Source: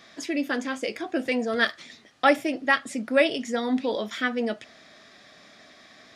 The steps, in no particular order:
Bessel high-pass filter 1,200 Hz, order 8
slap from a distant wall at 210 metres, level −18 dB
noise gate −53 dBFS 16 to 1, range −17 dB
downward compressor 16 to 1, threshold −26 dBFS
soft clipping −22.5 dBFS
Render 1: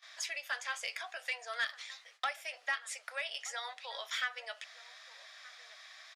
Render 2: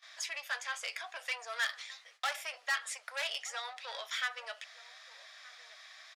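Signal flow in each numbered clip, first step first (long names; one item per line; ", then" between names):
downward compressor, then slap from a distant wall, then noise gate, then Bessel high-pass filter, then soft clipping
soft clipping, then downward compressor, then slap from a distant wall, then noise gate, then Bessel high-pass filter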